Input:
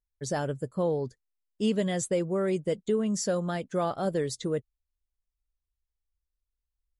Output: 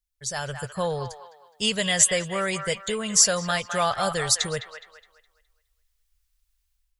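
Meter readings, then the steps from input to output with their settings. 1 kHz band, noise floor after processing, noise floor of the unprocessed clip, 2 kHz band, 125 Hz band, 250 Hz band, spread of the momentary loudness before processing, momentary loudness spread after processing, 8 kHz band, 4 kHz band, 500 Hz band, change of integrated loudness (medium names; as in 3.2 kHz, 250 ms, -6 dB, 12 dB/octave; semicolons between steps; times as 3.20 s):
+7.5 dB, -74 dBFS, under -85 dBFS, +13.0 dB, 0.0 dB, -3.5 dB, 5 LU, 14 LU, +17.0 dB, +16.0 dB, -0.5 dB, +6.5 dB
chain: level rider gain up to 11 dB; amplifier tone stack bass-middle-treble 10-0-10; feedback echo behind a band-pass 208 ms, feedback 35%, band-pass 1.5 kHz, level -6 dB; trim +7 dB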